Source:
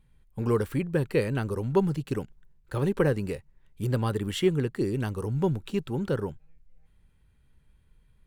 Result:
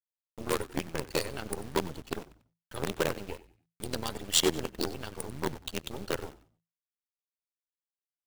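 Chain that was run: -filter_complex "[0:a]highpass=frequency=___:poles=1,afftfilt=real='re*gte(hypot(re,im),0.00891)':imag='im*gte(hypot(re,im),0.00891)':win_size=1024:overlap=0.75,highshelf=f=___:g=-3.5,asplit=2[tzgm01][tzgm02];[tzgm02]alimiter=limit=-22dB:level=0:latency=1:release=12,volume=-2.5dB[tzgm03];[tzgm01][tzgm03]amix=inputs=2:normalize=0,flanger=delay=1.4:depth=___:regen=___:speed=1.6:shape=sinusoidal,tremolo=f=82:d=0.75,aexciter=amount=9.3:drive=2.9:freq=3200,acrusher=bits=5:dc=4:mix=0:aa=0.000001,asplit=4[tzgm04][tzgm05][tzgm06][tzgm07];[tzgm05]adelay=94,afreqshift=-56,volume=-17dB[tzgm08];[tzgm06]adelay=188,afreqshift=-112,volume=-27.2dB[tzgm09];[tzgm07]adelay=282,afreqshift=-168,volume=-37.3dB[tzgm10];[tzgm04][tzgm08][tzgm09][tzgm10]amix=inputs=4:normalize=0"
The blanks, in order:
260, 5100, 3.6, 57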